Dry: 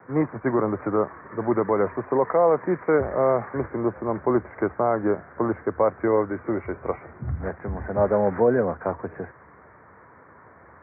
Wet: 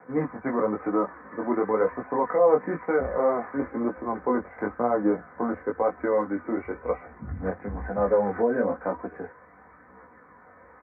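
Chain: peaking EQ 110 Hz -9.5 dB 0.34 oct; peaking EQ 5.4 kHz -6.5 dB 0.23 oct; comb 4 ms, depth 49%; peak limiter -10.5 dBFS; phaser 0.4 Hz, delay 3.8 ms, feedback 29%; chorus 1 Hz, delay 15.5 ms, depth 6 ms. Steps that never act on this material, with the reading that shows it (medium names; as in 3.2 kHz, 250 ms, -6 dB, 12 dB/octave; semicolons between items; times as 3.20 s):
peaking EQ 5.4 kHz: input has nothing above 2.2 kHz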